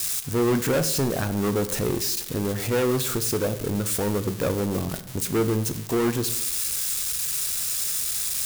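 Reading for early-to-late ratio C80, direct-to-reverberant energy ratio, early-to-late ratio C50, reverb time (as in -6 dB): 15.5 dB, 9.5 dB, 13.5 dB, 0.80 s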